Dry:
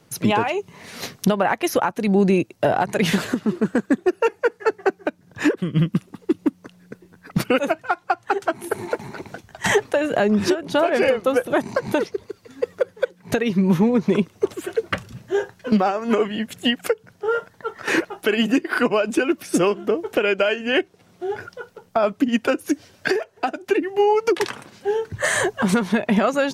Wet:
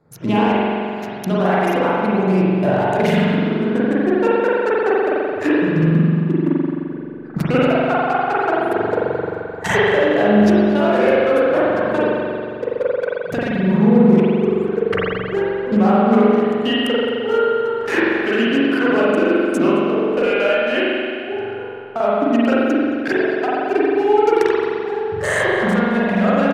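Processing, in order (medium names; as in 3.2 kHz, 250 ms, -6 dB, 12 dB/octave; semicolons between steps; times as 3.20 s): local Wiener filter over 15 samples; in parallel at +0.5 dB: gain riding 2 s; on the sum: delay 220 ms -21.5 dB; reverberation RT60 2.4 s, pre-delay 43 ms, DRR -8.5 dB; trim -10.5 dB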